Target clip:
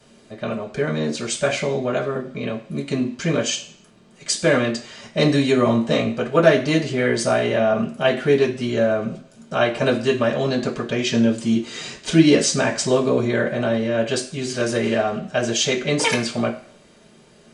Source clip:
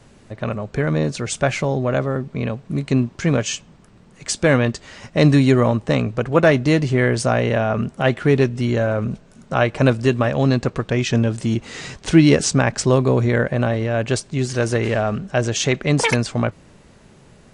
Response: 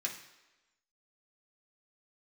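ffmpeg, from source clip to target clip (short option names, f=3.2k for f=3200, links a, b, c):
-filter_complex "[0:a]asettb=1/sr,asplit=3[a][b][c];[a]atrim=end=5.644[d];[b]atrim=start=5.64:end=6.16,asetpts=PTS-STARTPTS,afade=t=in:d=0.004:c=qsin,afade=t=out:st=0.516:d=0.004:c=qsin,asplit=2[e][f];[f]adelay=18,volume=-4.5dB[g];[e][g]amix=inputs=2:normalize=0,atrim=end_sample=22932[h];[c]atrim=start=6.156[i];[d][h]acrossfade=d=0.004:c1=hsin:c2=qsin[j];[j][i]acrossfade=d=0.004:c1=qsin:c2=hsin[k];[1:a]atrim=start_sample=2205,asetrate=83790,aresample=44100[l];[k][l]afir=irnorm=-1:irlink=0,volume=5.5dB"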